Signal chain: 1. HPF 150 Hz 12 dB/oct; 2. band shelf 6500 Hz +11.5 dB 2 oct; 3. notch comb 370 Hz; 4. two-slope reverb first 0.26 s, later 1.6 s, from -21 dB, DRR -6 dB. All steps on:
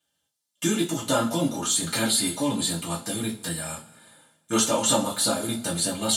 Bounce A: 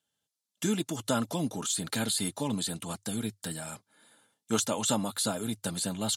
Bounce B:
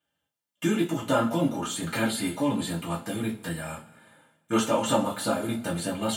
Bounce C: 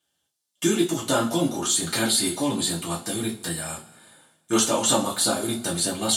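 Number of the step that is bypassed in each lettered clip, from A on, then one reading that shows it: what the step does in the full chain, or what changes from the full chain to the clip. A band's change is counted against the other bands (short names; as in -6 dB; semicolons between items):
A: 4, 125 Hz band +3.5 dB; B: 2, loudness change -3.0 LU; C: 3, loudness change +1.0 LU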